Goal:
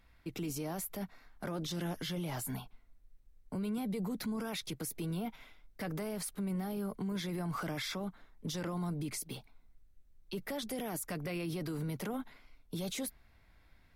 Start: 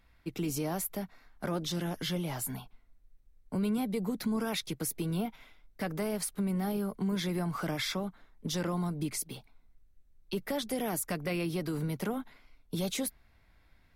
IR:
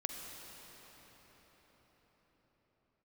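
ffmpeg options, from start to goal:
-af "alimiter=level_in=6.5dB:limit=-24dB:level=0:latency=1:release=17,volume=-6.5dB"

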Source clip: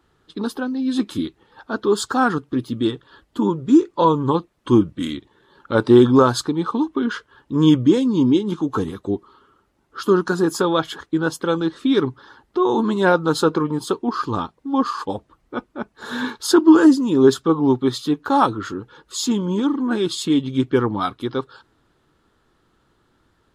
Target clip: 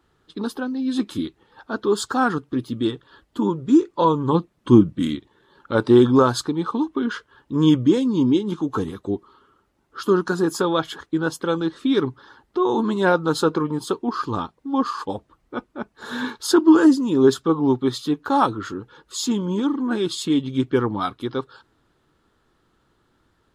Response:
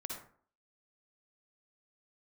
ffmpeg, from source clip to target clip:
-filter_complex "[0:a]asettb=1/sr,asplit=3[a][b][c];[a]atrim=end=4.324[d];[b]atrim=start=4.32:end=5.16,asetpts=PTS-STARTPTS,afade=t=in:d=0.004:c=qsin,afade=t=out:st=0.836:d=0.004:c=qsin,equalizer=f=170:t=o:w=1.8:g=7[e];[c]atrim=start=5.156[f];[d][e]acrossfade=d=0.004:c1=hsin:c2=qsin[g];[g][f]acrossfade=d=0.004:c1=qsin:c2=hsin,volume=-2dB"

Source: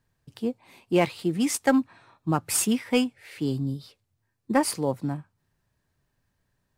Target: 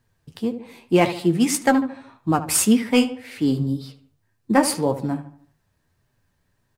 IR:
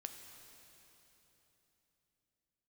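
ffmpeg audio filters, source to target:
-filter_complex "[0:a]asplit=2[a][b];[b]adelay=74,lowpass=f=2.4k:p=1,volume=-12dB,asplit=2[c][d];[d]adelay=74,lowpass=f=2.4k:p=1,volume=0.46,asplit=2[e][f];[f]adelay=74,lowpass=f=2.4k:p=1,volume=0.46,asplit=2[g][h];[h]adelay=74,lowpass=f=2.4k:p=1,volume=0.46,asplit=2[i][j];[j]adelay=74,lowpass=f=2.4k:p=1,volume=0.46[k];[a][c][e][g][i][k]amix=inputs=6:normalize=0,flanger=delay=7.9:depth=5.4:regen=48:speed=1.8:shape=triangular,volume=9dB"

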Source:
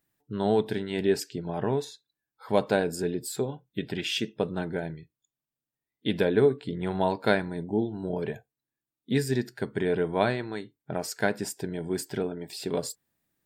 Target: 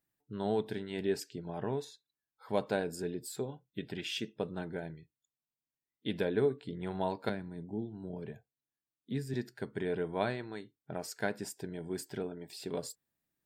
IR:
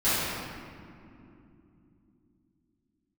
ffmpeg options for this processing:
-filter_complex "[0:a]asettb=1/sr,asplit=3[a][b][c];[a]atrim=end=7.294[d];[b]atrim=start=7.29:end=9.34,asetpts=PTS-STARTPTS,afade=t=in:d=0.004:c=qsin,afade=t=out:st=2.046:d=0.004:c=qsin,acrossover=split=290[e][f];[f]acompressor=threshold=-49dB:ratio=1.5[g];[e][g]amix=inputs=2:normalize=0[h];[c]atrim=start=9.336[i];[d][h]acrossfade=d=0.004:c1=hsin:c2=qsin[j];[j][i]acrossfade=d=0.004:c1=qsin:c2=hsin,volume=-8dB"

